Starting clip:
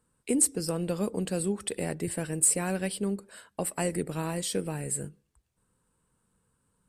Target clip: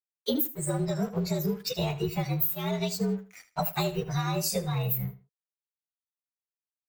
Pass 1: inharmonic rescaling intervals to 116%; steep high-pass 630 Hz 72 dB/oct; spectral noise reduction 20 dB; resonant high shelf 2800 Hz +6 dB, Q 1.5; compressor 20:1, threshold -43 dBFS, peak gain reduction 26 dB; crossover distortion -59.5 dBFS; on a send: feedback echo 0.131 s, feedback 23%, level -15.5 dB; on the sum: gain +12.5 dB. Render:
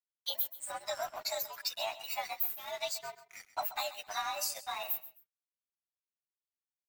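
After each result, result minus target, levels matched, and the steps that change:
echo 53 ms late; compressor: peak gain reduction +6 dB; 500 Hz band -3.0 dB
change: feedback echo 78 ms, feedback 23%, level -15.5 dB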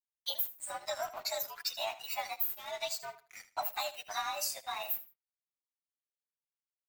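compressor: peak gain reduction +6 dB; 500 Hz band -3.5 dB
change: compressor 20:1, threshold -36.5 dBFS, peak gain reduction 19.5 dB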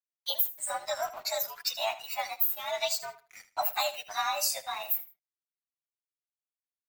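500 Hz band -3.5 dB
remove: steep high-pass 630 Hz 72 dB/oct

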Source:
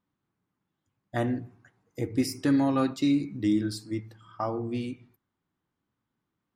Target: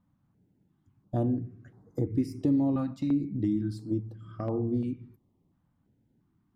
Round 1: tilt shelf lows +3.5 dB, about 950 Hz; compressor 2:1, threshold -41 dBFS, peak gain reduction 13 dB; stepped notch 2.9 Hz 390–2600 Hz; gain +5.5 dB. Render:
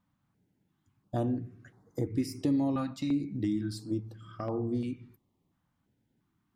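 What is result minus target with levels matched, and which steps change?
1000 Hz band +4.0 dB
change: tilt shelf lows +10 dB, about 950 Hz

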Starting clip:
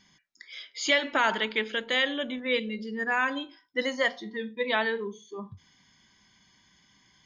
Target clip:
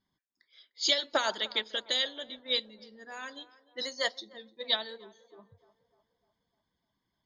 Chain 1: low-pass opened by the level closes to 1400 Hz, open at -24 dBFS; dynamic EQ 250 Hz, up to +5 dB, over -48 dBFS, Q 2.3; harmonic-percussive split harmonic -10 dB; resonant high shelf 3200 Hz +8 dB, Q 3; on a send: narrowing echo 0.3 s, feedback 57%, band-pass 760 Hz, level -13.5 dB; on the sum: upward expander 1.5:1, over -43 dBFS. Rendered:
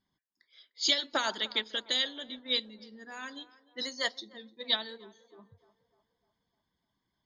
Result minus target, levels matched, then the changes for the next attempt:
500 Hz band -3.5 dB
change: dynamic EQ 580 Hz, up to +5 dB, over -48 dBFS, Q 2.3

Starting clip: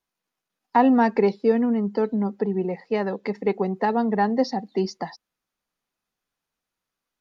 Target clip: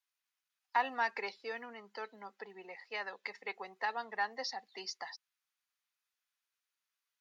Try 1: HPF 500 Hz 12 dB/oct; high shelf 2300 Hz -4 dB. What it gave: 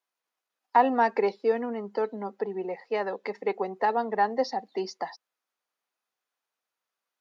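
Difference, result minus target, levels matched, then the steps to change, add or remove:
2000 Hz band -8.5 dB
change: HPF 1700 Hz 12 dB/oct

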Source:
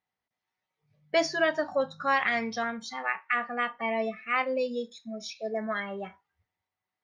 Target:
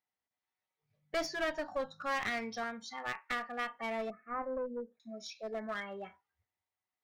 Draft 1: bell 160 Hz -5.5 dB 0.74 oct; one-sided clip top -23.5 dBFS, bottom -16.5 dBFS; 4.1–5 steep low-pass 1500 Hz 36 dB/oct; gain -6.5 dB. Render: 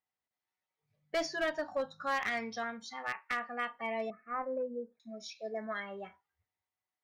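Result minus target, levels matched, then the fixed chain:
one-sided clip: distortion -5 dB
bell 160 Hz -5.5 dB 0.74 oct; one-sided clip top -30.5 dBFS, bottom -16.5 dBFS; 4.1–5 steep low-pass 1500 Hz 36 dB/oct; gain -6.5 dB

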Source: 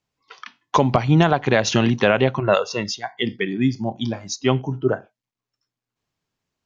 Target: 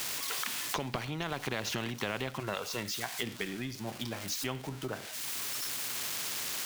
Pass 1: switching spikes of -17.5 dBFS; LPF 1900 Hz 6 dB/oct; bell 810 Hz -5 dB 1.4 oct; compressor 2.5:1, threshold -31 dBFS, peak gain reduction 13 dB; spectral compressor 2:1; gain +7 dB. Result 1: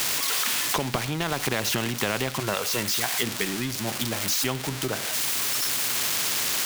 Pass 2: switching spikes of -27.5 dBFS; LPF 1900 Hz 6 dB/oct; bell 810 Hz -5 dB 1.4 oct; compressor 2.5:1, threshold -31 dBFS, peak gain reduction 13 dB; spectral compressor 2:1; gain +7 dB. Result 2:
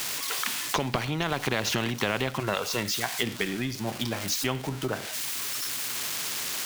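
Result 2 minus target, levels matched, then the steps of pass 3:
compressor: peak gain reduction -5.5 dB
switching spikes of -27.5 dBFS; LPF 1900 Hz 6 dB/oct; bell 810 Hz -5 dB 1.4 oct; compressor 2.5:1, threshold -40.5 dBFS, peak gain reduction 18.5 dB; spectral compressor 2:1; gain +7 dB

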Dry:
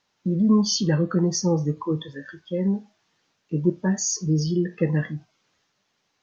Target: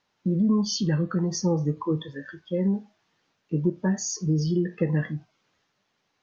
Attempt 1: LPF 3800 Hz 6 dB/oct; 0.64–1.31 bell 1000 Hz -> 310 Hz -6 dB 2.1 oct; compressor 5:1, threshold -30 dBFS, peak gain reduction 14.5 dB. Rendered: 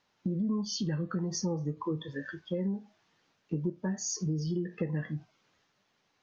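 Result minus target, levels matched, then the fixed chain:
compressor: peak gain reduction +9 dB
LPF 3800 Hz 6 dB/oct; 0.64–1.31 bell 1000 Hz -> 310 Hz -6 dB 2.1 oct; compressor 5:1, threshold -18.5 dBFS, peak gain reduction 5 dB

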